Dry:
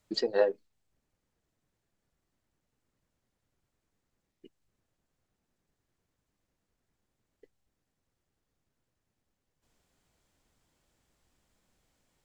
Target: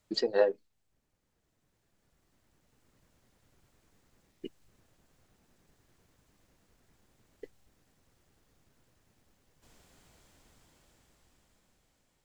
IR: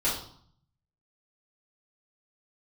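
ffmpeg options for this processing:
-af "dynaudnorm=f=590:g=7:m=13dB"

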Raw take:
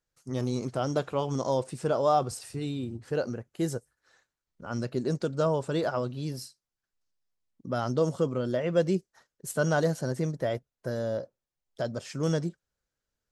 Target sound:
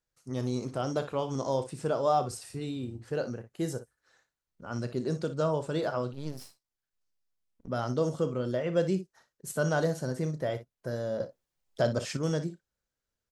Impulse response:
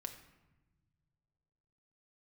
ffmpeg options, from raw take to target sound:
-filter_complex "[0:a]aecho=1:1:32|59:0.2|0.237,asettb=1/sr,asplit=3[a][b][c];[a]atrim=end=6.134[d];[b]atrim=start=6.13:end=7.68,asetpts=PTS-STARTPTS,afade=t=in:d=0.004:c=qsin,afade=t=out:st=1.546:d=0.004:c=qsin,aeval=exprs='max(val(0),0)':c=same[e];[c]atrim=start=7.676[f];[d][e]acrossfade=d=0.004:c1=hsin:c2=qsin[g];[g][f]acrossfade=d=0.004:c1=qsin:c2=hsin,asettb=1/sr,asplit=3[h][i][j];[h]atrim=end=11.204[k];[i]atrim=start=11.2:end=12.17,asetpts=PTS-STARTPTS,afade=t=in:d=0.004:c=qsin,afade=t=out:st=0.966:d=0.004:c=qsin,acontrast=86[l];[j]atrim=start=12.166[m];[k][l]acrossfade=d=0.004:c1=hsin:c2=qsin[n];[n][m]acrossfade=d=0.004:c1=qsin:c2=hsin,volume=-2.5dB"

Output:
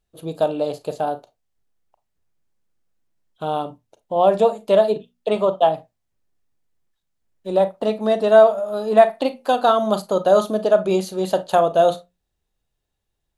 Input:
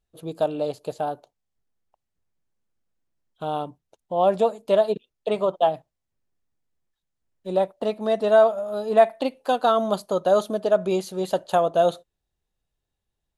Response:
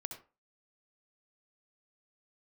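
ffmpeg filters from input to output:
-filter_complex "[0:a]bandreject=f=60:t=h:w=6,bandreject=f=120:t=h:w=6,bandreject=f=180:t=h:w=6,bandreject=f=240:t=h:w=6,asplit=2[a][b];[1:a]atrim=start_sample=2205,asetrate=83790,aresample=44100[c];[b][c]afir=irnorm=-1:irlink=0,volume=6dB[d];[a][d]amix=inputs=2:normalize=0,volume=-1dB"

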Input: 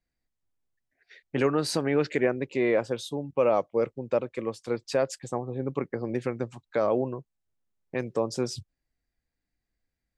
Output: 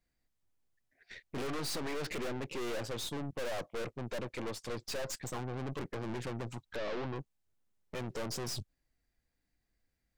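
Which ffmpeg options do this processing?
-filter_complex "[0:a]aeval=exprs='(tanh(141*val(0)+0.75)-tanh(0.75))/141':c=same,asettb=1/sr,asplit=3[a][b][c];[a]atrim=end=6.764[d];[b]atrim=start=6.76:end=7.16,asetpts=PTS-STARTPTS,afade=t=in:d=0.004:c=qsin,afade=t=out:st=0.396:d=0.004:c=qsin,lowpass=f=5.1k:w=0.5412,lowpass=f=5.1k:w=1.3066[e];[c]atrim=start=7.156[f];[d][e]acrossfade=d=0.004:c1=hsin:c2=qsin[g];[g][f]acrossfade=d=0.004:c1=qsin:c2=hsin,volume=6.5dB"

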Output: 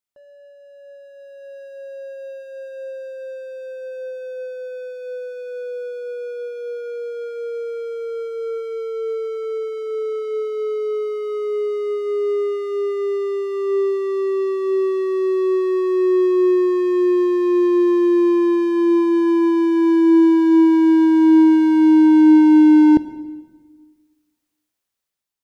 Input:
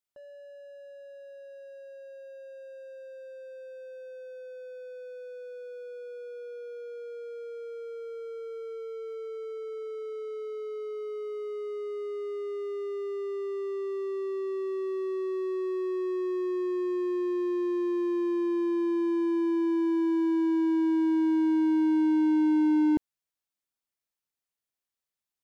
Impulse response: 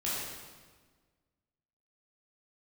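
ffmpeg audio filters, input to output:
-filter_complex "[0:a]dynaudnorm=f=560:g=5:m=11.5dB,asplit=2[a][b];[1:a]atrim=start_sample=2205[c];[b][c]afir=irnorm=-1:irlink=0,volume=-18dB[d];[a][d]amix=inputs=2:normalize=0"

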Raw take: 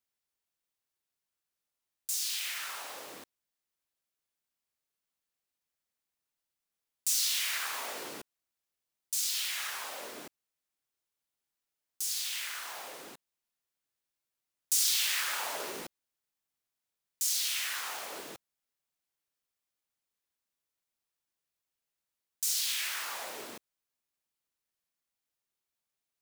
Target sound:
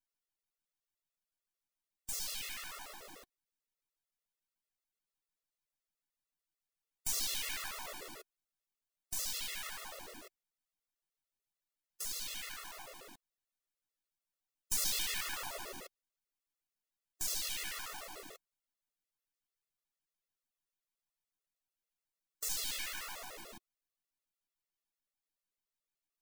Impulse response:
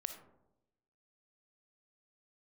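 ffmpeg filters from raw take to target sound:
-af "aeval=exprs='if(lt(val(0),0),0.251*val(0),val(0))':c=same,afftfilt=real='re*gt(sin(2*PI*6.8*pts/sr)*(1-2*mod(floor(b*sr/1024/360),2)),0)':imag='im*gt(sin(2*PI*6.8*pts/sr)*(1-2*mod(floor(b*sr/1024/360),2)),0)':win_size=1024:overlap=0.75"

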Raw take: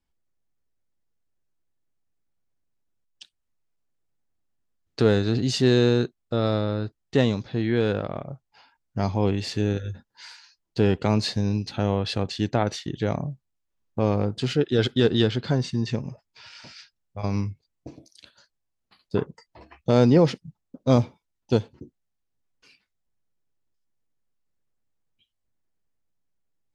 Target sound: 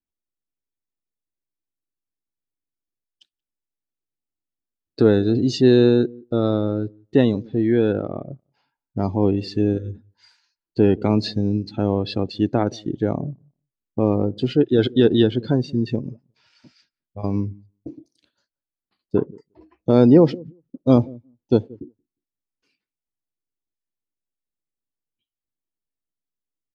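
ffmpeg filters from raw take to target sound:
-filter_complex "[0:a]equalizer=f=310:w=1.4:g=8.5,asplit=2[a][b];[b]adelay=178,lowpass=f=850:p=1,volume=-22dB,asplit=2[c][d];[d]adelay=178,lowpass=f=850:p=1,volume=0.22[e];[a][c][e]amix=inputs=3:normalize=0,afftdn=nr=15:nf=-33"

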